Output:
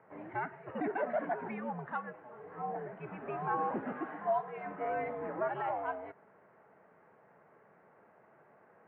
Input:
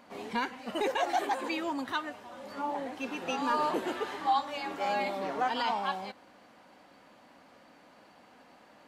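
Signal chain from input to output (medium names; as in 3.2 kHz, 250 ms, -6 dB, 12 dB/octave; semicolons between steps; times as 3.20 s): mistuned SSB -110 Hz 300–2100 Hz; trim -4 dB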